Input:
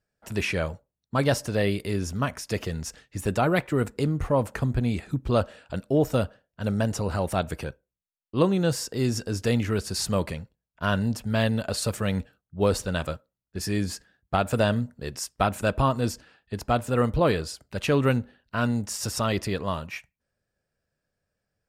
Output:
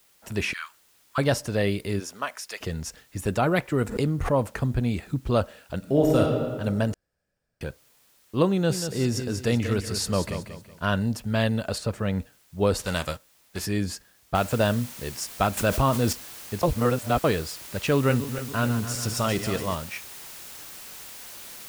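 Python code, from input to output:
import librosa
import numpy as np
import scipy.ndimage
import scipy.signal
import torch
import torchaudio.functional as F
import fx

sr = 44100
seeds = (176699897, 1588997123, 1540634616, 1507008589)

y = fx.steep_highpass(x, sr, hz=1100.0, slope=48, at=(0.53, 1.18))
y = fx.highpass(y, sr, hz=fx.line((1.99, 380.0), (2.6, 1100.0)), slope=12, at=(1.99, 2.6), fade=0.02)
y = fx.pre_swell(y, sr, db_per_s=92.0, at=(3.87, 4.29), fade=0.02)
y = fx.reverb_throw(y, sr, start_s=5.78, length_s=0.42, rt60_s=1.8, drr_db=-1.0)
y = fx.echo_feedback(y, sr, ms=186, feedback_pct=33, wet_db=-9.0, at=(8.51, 10.84))
y = fx.lowpass(y, sr, hz=2000.0, slope=6, at=(11.78, 12.2))
y = fx.envelope_flatten(y, sr, power=0.6, at=(12.78, 13.65), fade=0.02)
y = fx.noise_floor_step(y, sr, seeds[0], at_s=14.35, before_db=-61, after_db=-42, tilt_db=0.0)
y = fx.env_flatten(y, sr, amount_pct=50, at=(15.57, 16.13))
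y = fx.reverse_delay_fb(y, sr, ms=142, feedback_pct=69, wet_db=-10.0, at=(17.96, 19.75))
y = fx.edit(y, sr, fx.room_tone_fill(start_s=6.94, length_s=0.67),
    fx.reverse_span(start_s=16.63, length_s=0.61), tone=tone)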